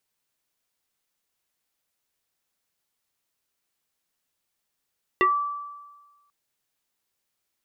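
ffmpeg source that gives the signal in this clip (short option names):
-f lavfi -i "aevalsrc='0.178*pow(10,-3*t/1.32)*sin(2*PI*1160*t+1.9*pow(10,-3*t/0.18)*sin(2*PI*0.68*1160*t))':d=1.09:s=44100"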